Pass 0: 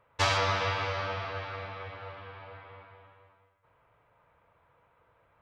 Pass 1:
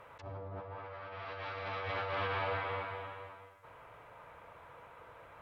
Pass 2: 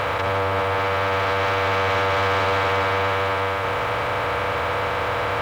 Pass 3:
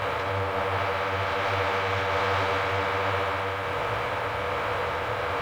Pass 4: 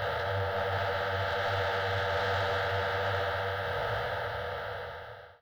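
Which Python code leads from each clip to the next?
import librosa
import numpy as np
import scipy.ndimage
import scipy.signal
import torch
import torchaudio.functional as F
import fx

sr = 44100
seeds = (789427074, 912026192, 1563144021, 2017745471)

y1 = fx.env_lowpass_down(x, sr, base_hz=400.0, full_db=-24.0)
y1 = fx.bass_treble(y1, sr, bass_db=-5, treble_db=1)
y1 = fx.over_compress(y1, sr, threshold_db=-47.0, ratio=-1.0)
y1 = y1 * librosa.db_to_amplitude(6.0)
y2 = fx.bin_compress(y1, sr, power=0.2)
y2 = fx.leveller(y2, sr, passes=2)
y2 = np.sign(y2) * np.maximum(np.abs(y2) - 10.0 ** (-55.0 / 20.0), 0.0)
y2 = y2 * librosa.db_to_amplitude(6.5)
y3 = fx.detune_double(y2, sr, cents=44)
y3 = y3 * librosa.db_to_amplitude(-1.5)
y4 = fx.fade_out_tail(y3, sr, length_s=1.47)
y4 = fx.fixed_phaser(y4, sr, hz=1600.0, stages=8)
y4 = 10.0 ** (-23.0 / 20.0) * np.tanh(y4 / 10.0 ** (-23.0 / 20.0))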